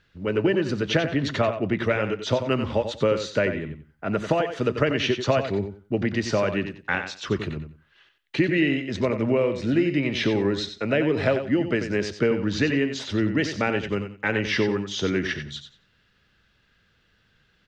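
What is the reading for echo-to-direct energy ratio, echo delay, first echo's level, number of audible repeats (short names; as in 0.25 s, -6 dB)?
-9.0 dB, 91 ms, -9.0 dB, 2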